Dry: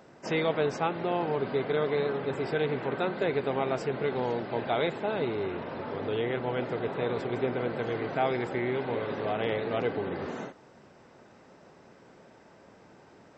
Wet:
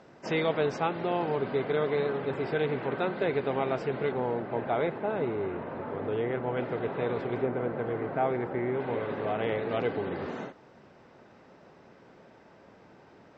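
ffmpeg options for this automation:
-af "asetnsamples=n=441:p=0,asendcmd='1.39 lowpass f 3900;4.12 lowpass f 1900;6.57 lowpass f 2900;7.42 lowpass f 1600;8.8 lowpass f 2800;9.69 lowpass f 4800',lowpass=6.2k"

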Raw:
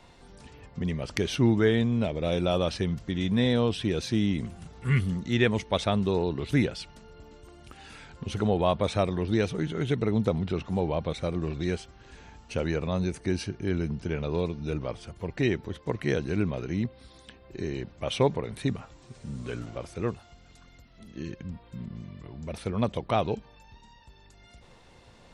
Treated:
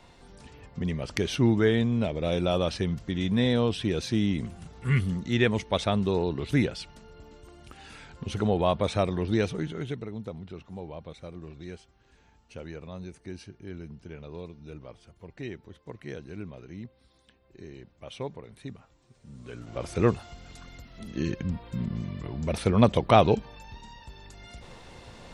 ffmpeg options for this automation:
-af "volume=19.5dB,afade=t=out:st=9.44:d=0.65:silence=0.251189,afade=t=in:st=19.23:d=0.43:silence=0.446684,afade=t=in:st=19.66:d=0.29:silence=0.237137"

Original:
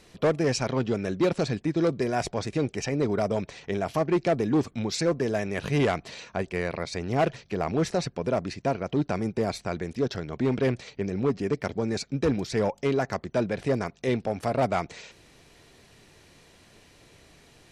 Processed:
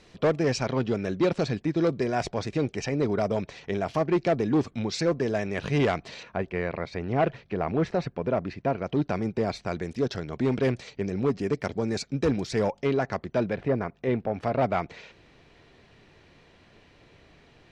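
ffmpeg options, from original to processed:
-af "asetnsamples=n=441:p=0,asendcmd='6.23 lowpass f 2700;8.78 lowpass f 5000;9.67 lowpass f 9700;12.75 lowpass f 4400;13.56 lowpass f 2100;14.34 lowpass f 3400',lowpass=6k"

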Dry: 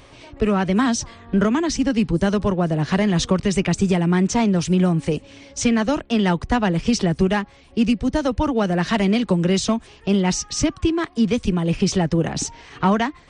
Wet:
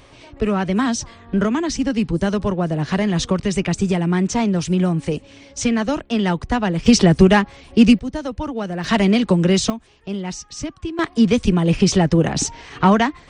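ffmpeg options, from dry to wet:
-af "asetnsamples=n=441:p=0,asendcmd='6.86 volume volume 7dB;7.99 volume volume -5.5dB;8.84 volume volume 3dB;9.7 volume volume -8dB;10.99 volume volume 4dB',volume=-0.5dB"

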